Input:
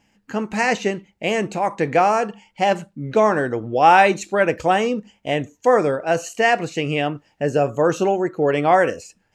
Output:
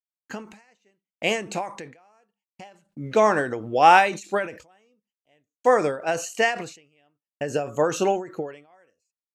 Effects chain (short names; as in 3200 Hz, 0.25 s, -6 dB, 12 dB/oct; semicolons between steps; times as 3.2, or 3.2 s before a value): gate -40 dBFS, range -56 dB; tilt +1.5 dB/oct; ending taper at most 120 dB/s; gain -1 dB